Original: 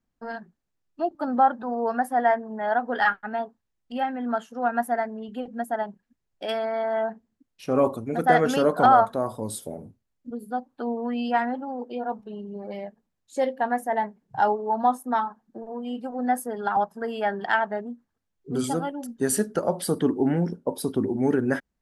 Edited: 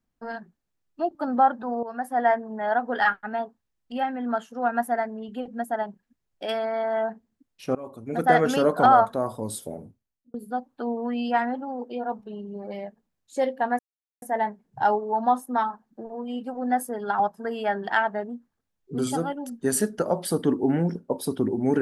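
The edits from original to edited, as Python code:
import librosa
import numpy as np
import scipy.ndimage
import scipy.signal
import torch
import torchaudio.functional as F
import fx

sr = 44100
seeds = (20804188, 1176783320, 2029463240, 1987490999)

y = fx.edit(x, sr, fx.fade_in_from(start_s=1.83, length_s=0.42, floor_db=-14.0),
    fx.fade_in_from(start_s=7.75, length_s=0.42, curve='qua', floor_db=-20.5),
    fx.fade_out_span(start_s=9.77, length_s=0.57),
    fx.insert_silence(at_s=13.79, length_s=0.43), tone=tone)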